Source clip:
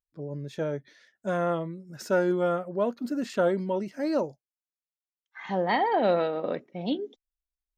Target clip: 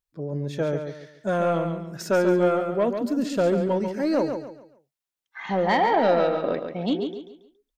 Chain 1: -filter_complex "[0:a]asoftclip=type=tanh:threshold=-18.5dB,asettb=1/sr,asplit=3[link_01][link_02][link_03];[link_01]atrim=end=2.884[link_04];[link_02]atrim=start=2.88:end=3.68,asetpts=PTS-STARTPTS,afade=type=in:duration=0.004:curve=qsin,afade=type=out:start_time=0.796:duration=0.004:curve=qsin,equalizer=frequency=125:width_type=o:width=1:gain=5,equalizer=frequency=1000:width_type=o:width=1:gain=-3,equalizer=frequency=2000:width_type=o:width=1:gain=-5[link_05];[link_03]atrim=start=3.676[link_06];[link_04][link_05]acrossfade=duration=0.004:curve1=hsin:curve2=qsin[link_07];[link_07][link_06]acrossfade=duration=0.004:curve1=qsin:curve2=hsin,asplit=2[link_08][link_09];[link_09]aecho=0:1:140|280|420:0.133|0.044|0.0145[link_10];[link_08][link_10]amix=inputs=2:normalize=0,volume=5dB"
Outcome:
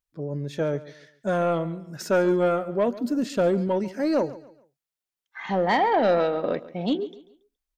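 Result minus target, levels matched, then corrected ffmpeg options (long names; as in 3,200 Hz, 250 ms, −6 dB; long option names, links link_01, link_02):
echo-to-direct −10.5 dB
-filter_complex "[0:a]asoftclip=type=tanh:threshold=-18.5dB,asettb=1/sr,asplit=3[link_01][link_02][link_03];[link_01]atrim=end=2.884[link_04];[link_02]atrim=start=2.88:end=3.68,asetpts=PTS-STARTPTS,afade=type=in:duration=0.004:curve=qsin,afade=type=out:start_time=0.796:duration=0.004:curve=qsin,equalizer=frequency=125:width_type=o:width=1:gain=5,equalizer=frequency=1000:width_type=o:width=1:gain=-3,equalizer=frequency=2000:width_type=o:width=1:gain=-5[link_05];[link_03]atrim=start=3.676[link_06];[link_04][link_05]acrossfade=duration=0.004:curve1=hsin:curve2=qsin[link_07];[link_07][link_06]acrossfade=duration=0.004:curve1=qsin:curve2=hsin,asplit=2[link_08][link_09];[link_09]aecho=0:1:140|280|420|560:0.447|0.147|0.0486|0.0161[link_10];[link_08][link_10]amix=inputs=2:normalize=0,volume=5dB"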